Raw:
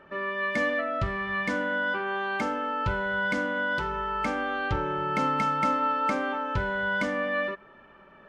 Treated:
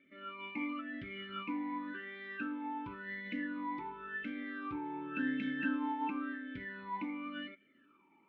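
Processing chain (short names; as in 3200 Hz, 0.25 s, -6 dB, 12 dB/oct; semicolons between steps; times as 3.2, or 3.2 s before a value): dynamic EQ 1200 Hz, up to +5 dB, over -44 dBFS, Q 5.6; formant shift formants +3 st; air absorption 190 m; vowel sweep i-u 0.92 Hz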